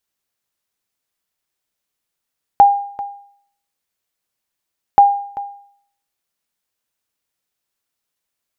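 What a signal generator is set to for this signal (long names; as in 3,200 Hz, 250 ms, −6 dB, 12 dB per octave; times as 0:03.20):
ping with an echo 806 Hz, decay 0.61 s, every 2.38 s, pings 2, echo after 0.39 s, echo −17 dB −1.5 dBFS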